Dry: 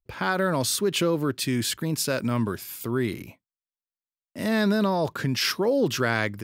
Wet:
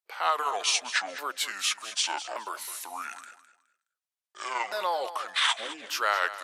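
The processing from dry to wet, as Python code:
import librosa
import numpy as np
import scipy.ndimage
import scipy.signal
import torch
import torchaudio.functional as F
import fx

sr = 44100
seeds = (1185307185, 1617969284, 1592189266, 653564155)

y = fx.pitch_ramps(x, sr, semitones=-11.5, every_ms=1180)
y = scipy.signal.sosfilt(scipy.signal.butter(4, 640.0, 'highpass', fs=sr, output='sos'), y)
y = fx.echo_feedback(y, sr, ms=209, feedback_pct=25, wet_db=-13.5)
y = y * 10.0 ** (2.0 / 20.0)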